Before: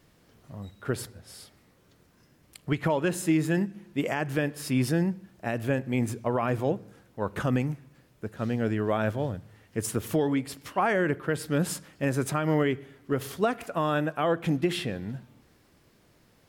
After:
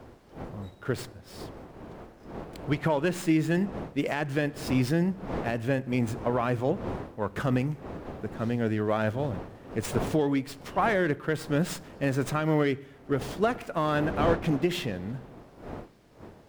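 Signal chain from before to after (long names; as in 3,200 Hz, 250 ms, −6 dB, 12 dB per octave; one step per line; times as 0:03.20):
wind on the microphone 520 Hz −40 dBFS
windowed peak hold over 3 samples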